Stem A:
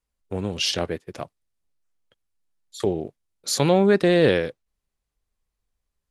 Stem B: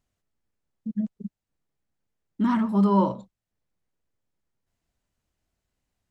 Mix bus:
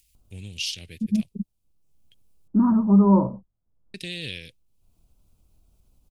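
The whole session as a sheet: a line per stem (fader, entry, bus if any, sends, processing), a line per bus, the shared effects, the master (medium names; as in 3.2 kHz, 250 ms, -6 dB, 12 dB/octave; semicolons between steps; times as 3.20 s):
-5.0 dB, 0.00 s, muted 2.48–3.94 s, no send, FFT filter 100 Hz 0 dB, 1.2 kHz -29 dB, 2.5 kHz +5 dB, 9.7 kHz +2 dB; compression 2:1, threshold -28 dBFS, peak gain reduction 7 dB
-2.0 dB, 0.15 s, no send, steep low-pass 1.4 kHz 48 dB/octave; tilt EQ -3 dB/octave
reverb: none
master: treble shelf 7.9 kHz +11.5 dB; upward compressor, threshold -49 dBFS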